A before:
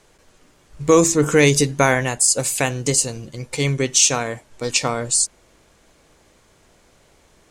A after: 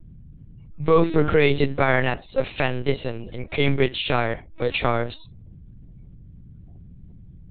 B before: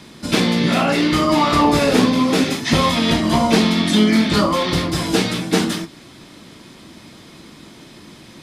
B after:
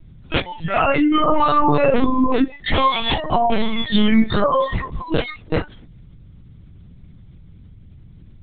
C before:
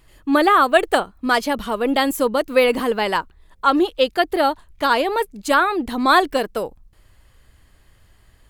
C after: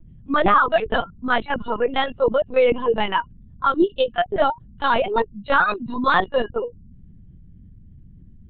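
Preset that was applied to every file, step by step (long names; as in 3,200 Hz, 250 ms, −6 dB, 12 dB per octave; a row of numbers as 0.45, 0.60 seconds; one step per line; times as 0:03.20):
noise reduction from a noise print of the clip's start 28 dB
mains hum 50 Hz, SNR 25 dB
brickwall limiter −9.5 dBFS
dynamic equaliser 110 Hz, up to −5 dB, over −44 dBFS, Q 3.2
linear-prediction vocoder at 8 kHz pitch kept
normalise the peak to −3 dBFS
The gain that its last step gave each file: +2.0, +3.5, +1.5 decibels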